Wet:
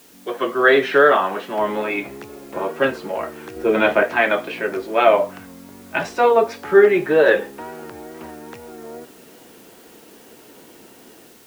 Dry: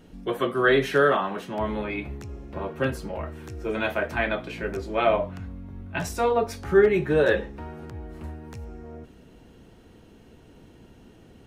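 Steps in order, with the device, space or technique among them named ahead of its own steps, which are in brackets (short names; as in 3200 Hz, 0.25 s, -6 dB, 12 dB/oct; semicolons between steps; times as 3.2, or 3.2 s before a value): dictaphone (BPF 330–3600 Hz; AGC gain up to 8 dB; wow and flutter; white noise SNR 30 dB); 3.56–4.03 low shelf 370 Hz +9 dB; gain +1.5 dB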